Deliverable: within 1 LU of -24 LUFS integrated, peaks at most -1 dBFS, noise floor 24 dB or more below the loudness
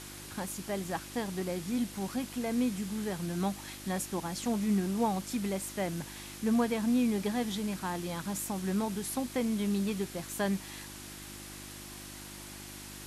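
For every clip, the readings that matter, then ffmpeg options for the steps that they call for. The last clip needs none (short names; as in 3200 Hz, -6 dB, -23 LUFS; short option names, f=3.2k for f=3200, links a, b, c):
hum 50 Hz; harmonics up to 350 Hz; hum level -49 dBFS; noise floor -46 dBFS; noise floor target -58 dBFS; loudness -33.5 LUFS; peak -18.5 dBFS; loudness target -24.0 LUFS
-> -af "bandreject=f=50:t=h:w=4,bandreject=f=100:t=h:w=4,bandreject=f=150:t=h:w=4,bandreject=f=200:t=h:w=4,bandreject=f=250:t=h:w=4,bandreject=f=300:t=h:w=4,bandreject=f=350:t=h:w=4"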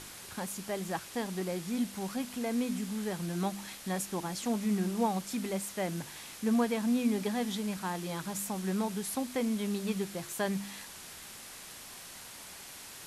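hum none; noise floor -48 dBFS; noise floor target -58 dBFS
-> -af "afftdn=nr=10:nf=-48"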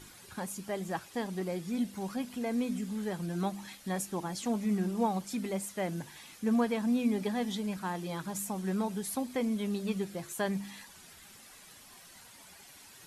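noise floor -54 dBFS; noise floor target -58 dBFS
-> -af "afftdn=nr=6:nf=-54"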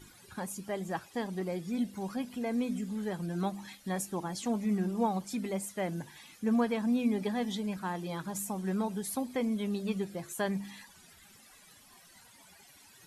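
noise floor -58 dBFS; loudness -34.0 LUFS; peak -19.0 dBFS; loudness target -24.0 LUFS
-> -af "volume=10dB"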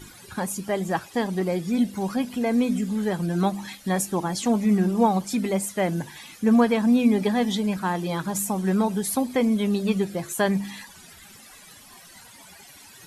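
loudness -24.0 LUFS; peak -9.0 dBFS; noise floor -48 dBFS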